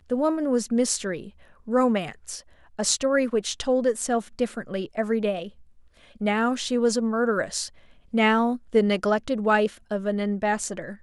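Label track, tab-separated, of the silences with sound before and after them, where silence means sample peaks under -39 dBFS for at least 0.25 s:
1.290000	1.670000	silence
2.400000	2.790000	silence
5.490000	6.160000	silence
7.680000	8.130000	silence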